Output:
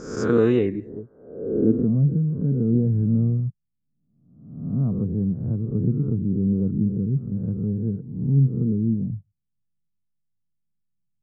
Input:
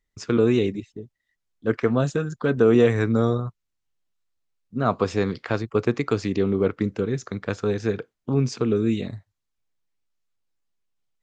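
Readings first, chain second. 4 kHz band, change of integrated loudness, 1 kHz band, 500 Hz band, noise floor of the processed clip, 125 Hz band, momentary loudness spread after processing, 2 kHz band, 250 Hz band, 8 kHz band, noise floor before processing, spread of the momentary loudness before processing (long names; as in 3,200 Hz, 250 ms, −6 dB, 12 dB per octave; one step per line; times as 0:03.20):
below −10 dB, +0.5 dB, below −10 dB, −5.0 dB, −76 dBFS, +5.5 dB, 11 LU, below −10 dB, +2.0 dB, can't be measured, −80 dBFS, 12 LU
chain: peak hold with a rise ahead of every peak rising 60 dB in 0.85 s
flat-topped bell 3,500 Hz −15 dB
low-pass filter sweep 5,500 Hz → 170 Hz, 0:00.26–0:01.93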